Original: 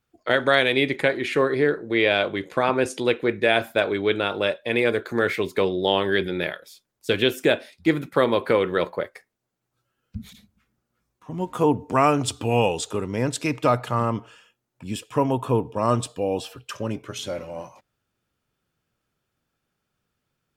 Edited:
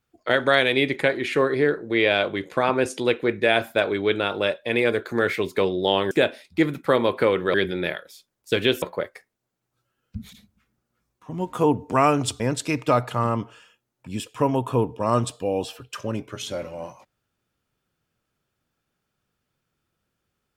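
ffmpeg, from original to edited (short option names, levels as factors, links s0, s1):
-filter_complex "[0:a]asplit=5[s0][s1][s2][s3][s4];[s0]atrim=end=6.112[s5];[s1]atrim=start=7.388:end=8.822[s6];[s2]atrim=start=6.108:end=7.392[s7];[s3]atrim=start=8.818:end=12.402[s8];[s4]atrim=start=13.158[s9];[s5][s6]acrossfade=d=0.004:c1=hsin:c2=hsin[s10];[s10][s7]acrossfade=d=0.004:c1=hsin:c2=hsin[s11];[s11][s8]acrossfade=d=0.004:c1=hsin:c2=hsin[s12];[s12][s9]acrossfade=d=0.004:c1=hsin:c2=hsin"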